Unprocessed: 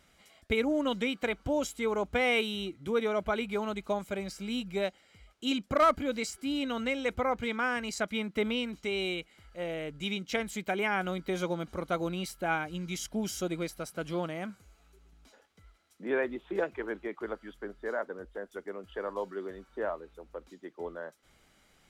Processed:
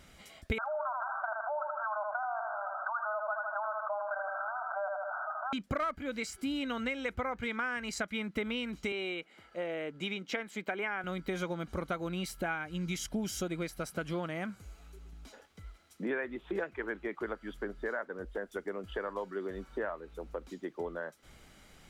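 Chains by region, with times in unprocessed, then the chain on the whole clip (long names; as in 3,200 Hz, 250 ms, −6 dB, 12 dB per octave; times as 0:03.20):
0:00.58–0:05.53: linear-phase brick-wall band-pass 590–1,600 Hz + repeating echo 78 ms, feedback 30%, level −9 dB + envelope flattener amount 70%
0:08.92–0:11.04: high-pass filter 270 Hz + high-shelf EQ 4,100 Hz −11 dB
whole clip: dynamic equaliser 1,700 Hz, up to +8 dB, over −47 dBFS, Q 1.1; downward compressor 4 to 1, threshold −41 dBFS; low-shelf EQ 230 Hz +5 dB; level +5.5 dB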